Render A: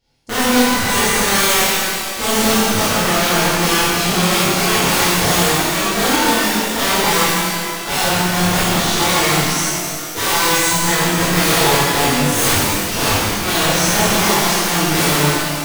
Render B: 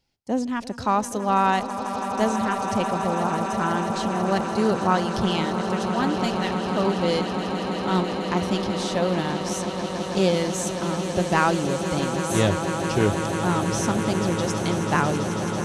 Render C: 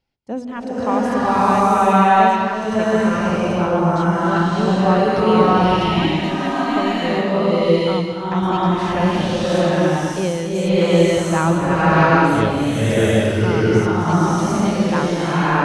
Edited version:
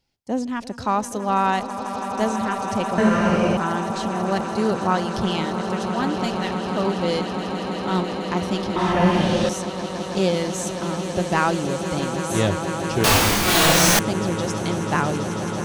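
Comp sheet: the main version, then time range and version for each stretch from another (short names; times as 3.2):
B
2.98–3.57 from C
8.76–9.49 from C
13.04–13.99 from A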